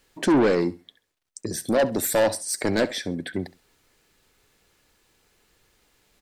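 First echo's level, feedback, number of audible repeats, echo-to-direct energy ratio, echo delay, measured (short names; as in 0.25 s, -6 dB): -18.5 dB, 24%, 2, -18.0 dB, 67 ms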